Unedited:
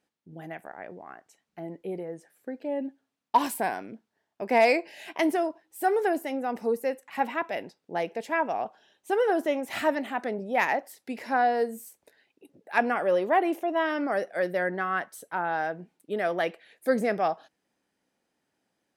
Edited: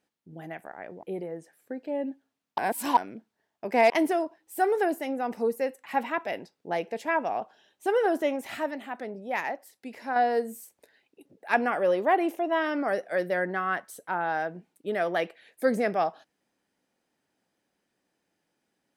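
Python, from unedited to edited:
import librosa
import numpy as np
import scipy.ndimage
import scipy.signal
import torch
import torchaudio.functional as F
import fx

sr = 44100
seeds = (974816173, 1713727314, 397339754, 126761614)

y = fx.edit(x, sr, fx.cut(start_s=1.03, length_s=0.77),
    fx.reverse_span(start_s=3.35, length_s=0.39),
    fx.cut(start_s=4.67, length_s=0.47),
    fx.clip_gain(start_s=9.71, length_s=1.69, db=-5.5), tone=tone)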